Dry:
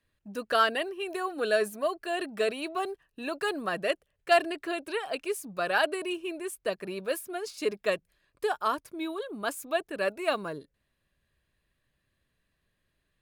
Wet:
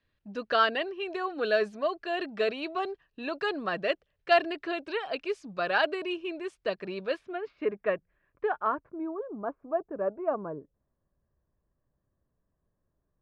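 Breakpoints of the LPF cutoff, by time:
LPF 24 dB/oct
7.05 s 5100 Hz
7.54 s 2100 Hz
8.58 s 2100 Hz
9.09 s 1100 Hz

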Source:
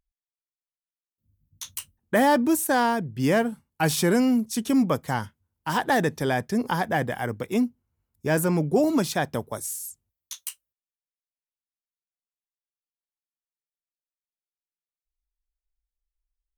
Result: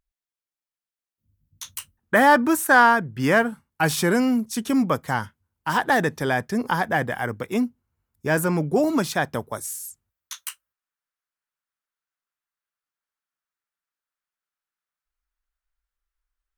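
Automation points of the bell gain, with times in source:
bell 1400 Hz 1.3 oct
1.63 s +3.5 dB
2.46 s +13.5 dB
3.08 s +13.5 dB
3.82 s +5.5 dB
9.62 s +5.5 dB
10.43 s +14.5 dB

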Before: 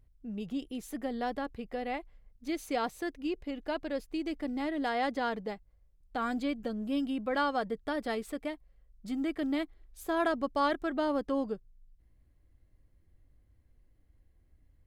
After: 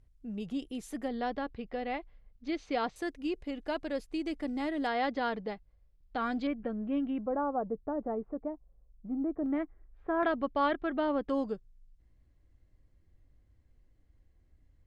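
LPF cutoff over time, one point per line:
LPF 24 dB/oct
11000 Hz
from 1.08 s 4900 Hz
from 2.96 s 11000 Hz
from 4.87 s 5100 Hz
from 6.47 s 2300 Hz
from 7.26 s 1000 Hz
from 9.46 s 1800 Hz
from 10.23 s 3500 Hz
from 11.29 s 8300 Hz

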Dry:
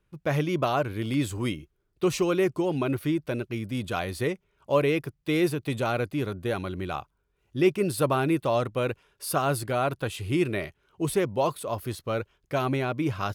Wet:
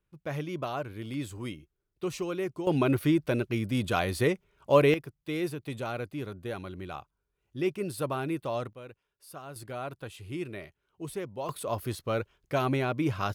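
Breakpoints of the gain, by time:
-8.5 dB
from 2.67 s +2 dB
from 4.94 s -7.5 dB
from 8.73 s -18.5 dB
from 9.56 s -11 dB
from 11.49 s -1 dB

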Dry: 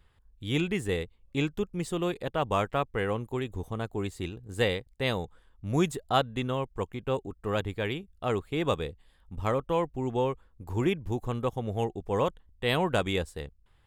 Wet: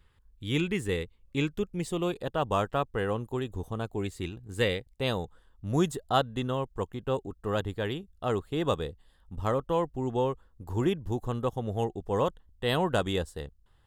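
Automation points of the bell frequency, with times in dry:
bell -13 dB 0.23 oct
1.41 s 690 Hz
2.2 s 2200 Hz
3.79 s 2200 Hz
4.38 s 420 Hz
5.13 s 2300 Hz

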